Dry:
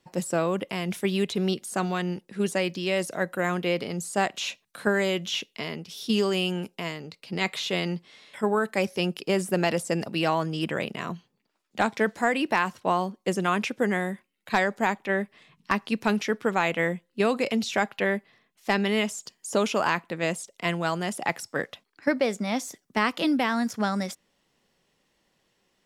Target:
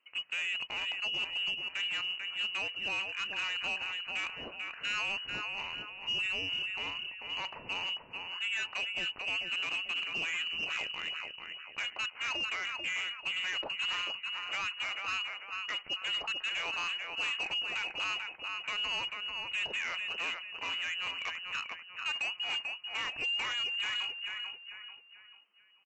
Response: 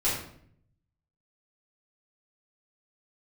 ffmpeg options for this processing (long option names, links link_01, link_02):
-filter_complex "[0:a]alimiter=limit=-14.5dB:level=0:latency=1:release=29,asetrate=45392,aresample=44100,atempo=0.971532,lowpass=frequency=2600:width_type=q:width=0.5098,lowpass=frequency=2600:width_type=q:width=0.6013,lowpass=frequency=2600:width_type=q:width=0.9,lowpass=frequency=2600:width_type=q:width=2.563,afreqshift=-3100,asplit=2[link_01][link_02];[link_02]aecho=0:1:441|882|1323|1764:0.447|0.165|0.0612|0.0226[link_03];[link_01][link_03]amix=inputs=2:normalize=0,asoftclip=type=tanh:threshold=-24dB,volume=-5.5dB" -ar 16000 -c:a libvorbis -b:a 64k